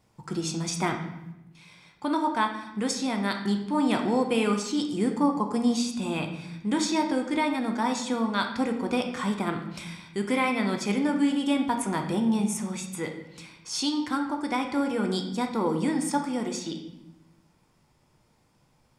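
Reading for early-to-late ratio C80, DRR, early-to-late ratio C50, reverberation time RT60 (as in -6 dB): 10.0 dB, 3.0 dB, 7.0 dB, 0.90 s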